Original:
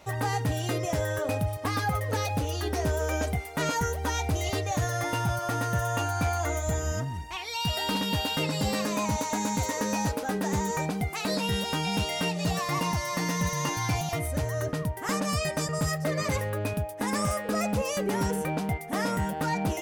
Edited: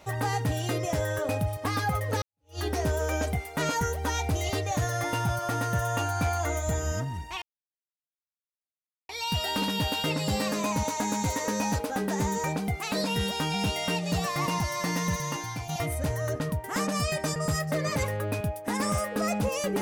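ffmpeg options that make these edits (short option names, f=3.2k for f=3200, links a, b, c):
-filter_complex "[0:a]asplit=4[a][b][c][d];[a]atrim=end=2.22,asetpts=PTS-STARTPTS,afade=t=out:st=2.216:d=0.004:c=hsin[e];[b]atrim=start=2.22:end=7.42,asetpts=PTS-STARTPTS,afade=t=in:d=0.37:c=exp,afade=t=out:st=5.196:d=0.004:c=hsin,apad=pad_dur=1.67[f];[c]atrim=start=7.42:end=14.02,asetpts=PTS-STARTPTS,afade=t=in:d=0.004:c=hsin,afade=t=out:st=5.95:d=0.65:silence=0.298538[g];[d]atrim=start=14.02,asetpts=PTS-STARTPTS,afade=t=in:d=0.004:c=hsin:silence=0.298538[h];[e][f][g][h]concat=n=4:v=0:a=1"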